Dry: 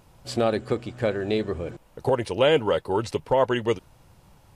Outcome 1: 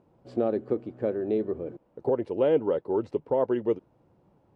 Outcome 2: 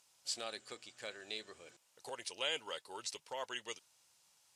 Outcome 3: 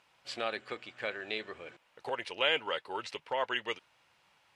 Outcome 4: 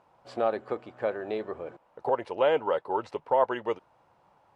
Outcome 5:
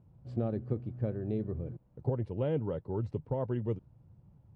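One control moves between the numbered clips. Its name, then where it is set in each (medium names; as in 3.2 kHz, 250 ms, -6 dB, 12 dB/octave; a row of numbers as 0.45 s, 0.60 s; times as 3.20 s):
band-pass filter, frequency: 340 Hz, 6.8 kHz, 2.4 kHz, 870 Hz, 120 Hz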